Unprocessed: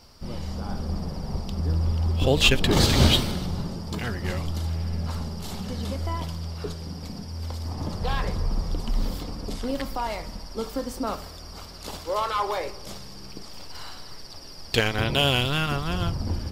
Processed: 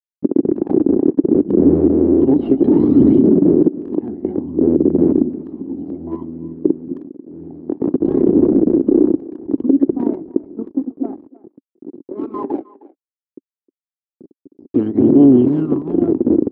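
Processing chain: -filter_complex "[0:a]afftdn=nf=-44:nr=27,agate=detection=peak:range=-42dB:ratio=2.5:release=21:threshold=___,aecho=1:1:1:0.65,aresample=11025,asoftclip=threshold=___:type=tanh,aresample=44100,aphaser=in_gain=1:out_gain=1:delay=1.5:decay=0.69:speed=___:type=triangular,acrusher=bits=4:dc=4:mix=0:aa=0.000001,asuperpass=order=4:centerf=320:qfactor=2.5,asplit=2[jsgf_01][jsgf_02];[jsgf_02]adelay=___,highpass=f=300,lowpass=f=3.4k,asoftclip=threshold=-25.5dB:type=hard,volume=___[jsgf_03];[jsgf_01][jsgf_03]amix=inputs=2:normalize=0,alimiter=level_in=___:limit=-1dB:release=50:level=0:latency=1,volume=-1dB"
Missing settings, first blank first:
-30dB, -10.5dB, 0.59, 310, -19dB, 22dB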